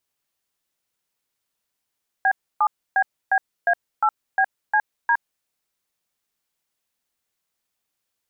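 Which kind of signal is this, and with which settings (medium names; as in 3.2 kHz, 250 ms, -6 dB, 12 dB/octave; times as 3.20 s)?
DTMF "B7BBA8BCD", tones 65 ms, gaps 290 ms, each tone -17.5 dBFS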